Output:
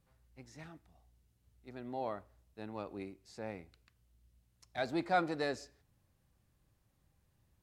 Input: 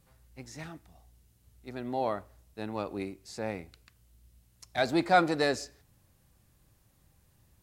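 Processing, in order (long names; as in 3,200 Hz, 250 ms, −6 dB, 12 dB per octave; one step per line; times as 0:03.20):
high-shelf EQ 5,700 Hz −7 dB
level −8 dB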